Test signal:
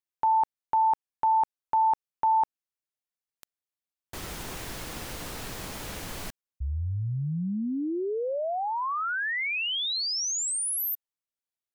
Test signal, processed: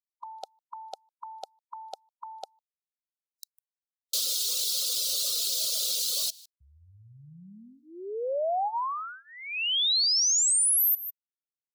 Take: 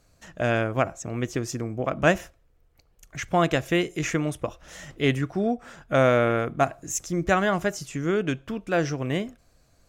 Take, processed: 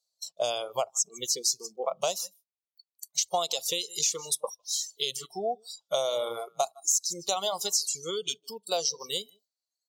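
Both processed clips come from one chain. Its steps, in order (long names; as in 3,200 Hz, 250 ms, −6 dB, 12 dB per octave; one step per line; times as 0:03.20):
high shelf with overshoot 2,900 Hz +11.5 dB, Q 3
on a send: single-tap delay 153 ms −14 dB
on the sum: downward expander −42 dBFS, range −8 dB
noise reduction from a noise print of the clip's start 22 dB
high-pass filter 460 Hz 12 dB per octave
in parallel at +2.5 dB: brickwall limiter −13 dBFS
on the sum: reverb reduction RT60 0.98 s
downward compressor 6 to 1, threshold −20 dBFS
phaser with its sweep stopped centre 700 Hz, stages 4
level −2.5 dB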